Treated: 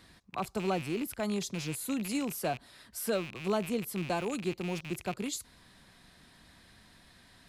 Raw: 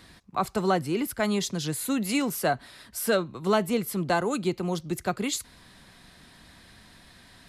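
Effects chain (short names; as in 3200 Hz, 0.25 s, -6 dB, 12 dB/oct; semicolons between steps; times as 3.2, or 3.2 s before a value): rattling part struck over -43 dBFS, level -21 dBFS; dynamic EQ 1900 Hz, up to -7 dB, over -41 dBFS, Q 0.85; gain -6 dB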